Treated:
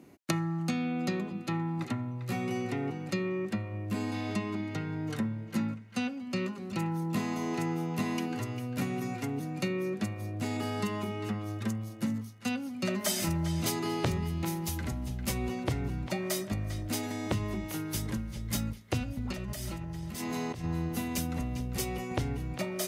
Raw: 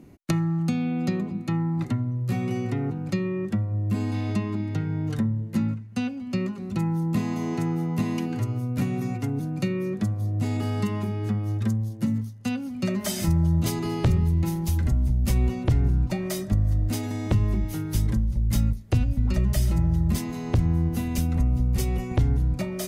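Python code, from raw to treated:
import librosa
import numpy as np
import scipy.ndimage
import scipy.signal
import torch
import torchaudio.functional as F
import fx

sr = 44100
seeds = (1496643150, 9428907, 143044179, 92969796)

p1 = fx.highpass(x, sr, hz=390.0, slope=6)
p2 = fx.over_compress(p1, sr, threshold_db=-37.0, ratio=-1.0, at=(19.32, 20.64))
y = p2 + fx.echo_banded(p2, sr, ms=399, feedback_pct=47, hz=2300.0, wet_db=-9.0, dry=0)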